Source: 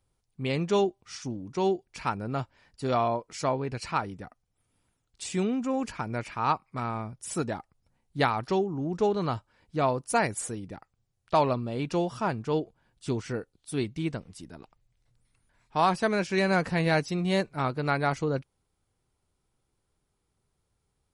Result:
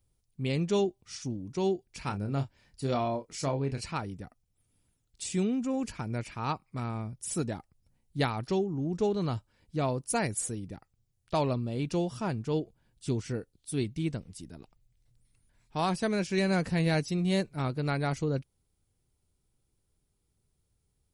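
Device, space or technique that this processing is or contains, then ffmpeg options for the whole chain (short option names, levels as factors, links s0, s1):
smiley-face EQ: -filter_complex "[0:a]asettb=1/sr,asplit=3[s0][s1][s2];[s0]atrim=end=2.034[s3];[s1]atrim=start=2.03:end=3.82,asetpts=PTS-STARTPTS,afade=t=in:d=0.004:c=qsin,afade=t=out:st=1.786:d=0.004:c=qsin,asplit=2[s4][s5];[s5]adelay=29,volume=0.398[s6];[s4][s6]amix=inputs=2:normalize=0,atrim=end_sample=78939[s7];[s2]atrim=start=3.816[s8];[s3][s7]acrossfade=d=0.004:c1=hsin:c2=qsin[s9];[s9][s8]acrossfade=d=0.004:c1=qsin:c2=hsin,lowshelf=f=170:g=4.5,equalizer=f=1100:t=o:w=1.9:g=-7,highshelf=f=9300:g=7,volume=0.841"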